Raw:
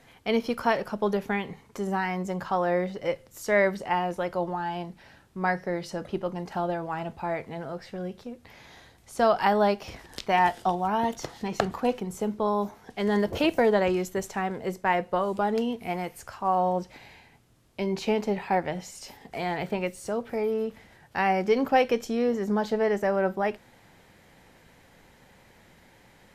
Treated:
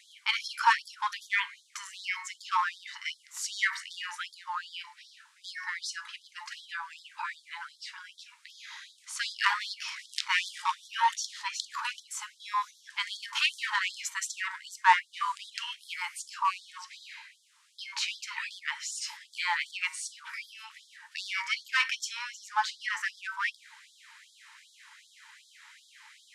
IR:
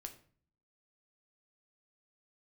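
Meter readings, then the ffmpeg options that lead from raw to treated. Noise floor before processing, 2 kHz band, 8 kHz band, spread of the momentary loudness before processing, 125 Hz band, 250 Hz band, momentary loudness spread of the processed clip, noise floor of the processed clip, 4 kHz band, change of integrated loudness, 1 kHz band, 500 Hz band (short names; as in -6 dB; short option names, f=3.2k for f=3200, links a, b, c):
-57 dBFS, +2.5 dB, +7.0 dB, 13 LU, under -40 dB, under -40 dB, 16 LU, -62 dBFS, +6.5 dB, -4.5 dB, -4.0 dB, under -40 dB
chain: -filter_complex "[0:a]bandreject=f=73.1:t=h:w=4,bandreject=f=146.2:t=h:w=4,bandreject=f=219.3:t=h:w=4,bandreject=f=292.4:t=h:w=4,bandreject=f=365.5:t=h:w=4,bandreject=f=438.6:t=h:w=4,bandreject=f=511.7:t=h:w=4,bandreject=f=584.8:t=h:w=4,bandreject=f=657.9:t=h:w=4,bandreject=f=731:t=h:w=4,bandreject=f=804.1:t=h:w=4,bandreject=f=877.2:t=h:w=4,bandreject=f=950.3:t=h:w=4,bandreject=f=1.0234k:t=h:w=4,bandreject=f=1.0965k:t=h:w=4,bandreject=f=1.1696k:t=h:w=4,bandreject=f=1.2427k:t=h:w=4,bandreject=f=1.3158k:t=h:w=4,bandreject=f=1.3889k:t=h:w=4,bandreject=f=1.462k:t=h:w=4,bandreject=f=1.5351k:t=h:w=4,bandreject=f=1.6082k:t=h:w=4,bandreject=f=1.6813k:t=h:w=4,bandreject=f=1.7544k:t=h:w=4,bandreject=f=1.8275k:t=h:w=4,bandreject=f=1.9006k:t=h:w=4,bandreject=f=1.9737k:t=h:w=4,bandreject=f=2.0468k:t=h:w=4,bandreject=f=2.1199k:t=h:w=4,bandreject=f=2.193k:t=h:w=4,bandreject=f=2.2661k:t=h:w=4,bandreject=f=2.3392k:t=h:w=4,bandreject=f=2.4123k:t=h:w=4,asplit=2[a][b];[b]aeval=exprs='0.075*(abs(mod(val(0)/0.075+3,4)-2)-1)':c=same,volume=-9.5dB[c];[a][c]amix=inputs=2:normalize=0,lowpass=f=9.6k:w=0.5412,lowpass=f=9.6k:w=1.3066,afftfilt=real='re*gte(b*sr/1024,820*pow(3300/820,0.5+0.5*sin(2*PI*2.6*pts/sr)))':imag='im*gte(b*sr/1024,820*pow(3300/820,0.5+0.5*sin(2*PI*2.6*pts/sr)))':win_size=1024:overlap=0.75,volume=5dB"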